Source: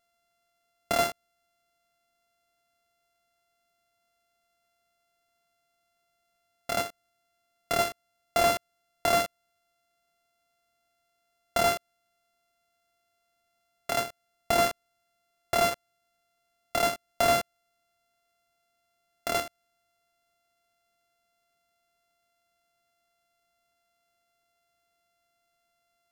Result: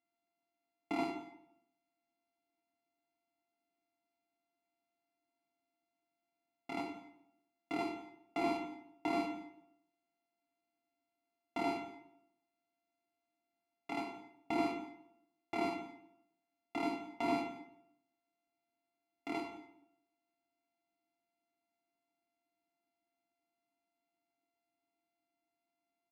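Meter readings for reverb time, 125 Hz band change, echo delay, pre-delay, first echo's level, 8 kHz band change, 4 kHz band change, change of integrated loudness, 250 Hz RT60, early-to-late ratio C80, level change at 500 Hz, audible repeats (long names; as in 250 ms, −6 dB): 0.75 s, −13.0 dB, 173 ms, 4 ms, −17.5 dB, −25.5 dB, −17.5 dB, −11.5 dB, 0.80 s, 10.0 dB, −12.5 dB, 1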